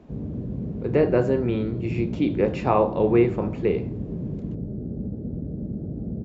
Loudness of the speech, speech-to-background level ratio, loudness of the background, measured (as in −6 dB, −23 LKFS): −23.5 LKFS, 8.5 dB, −32.0 LKFS